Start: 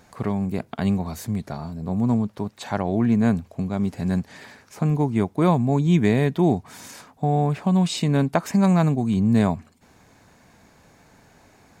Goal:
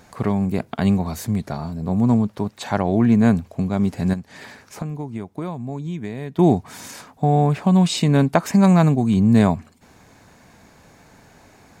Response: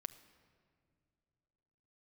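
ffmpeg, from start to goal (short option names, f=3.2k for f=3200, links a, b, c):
-filter_complex "[0:a]asettb=1/sr,asplit=3[a][b][c];[a]atrim=end=4.134[d];[b]atrim=start=4.13:end=6.39,asetpts=PTS-STARTPTS,afade=t=in:d=0.004:c=qsin,afade=t=out:st=2.256:d=0.004:c=qsin,acompressor=threshold=-31dB:ratio=6[e];[c]atrim=start=6.386[f];[d][e]acrossfade=d=0.004:c1=hsin:c2=qsin[g];[g][f]acrossfade=d=0.004:c1=qsin:c2=hsin,volume=4dB"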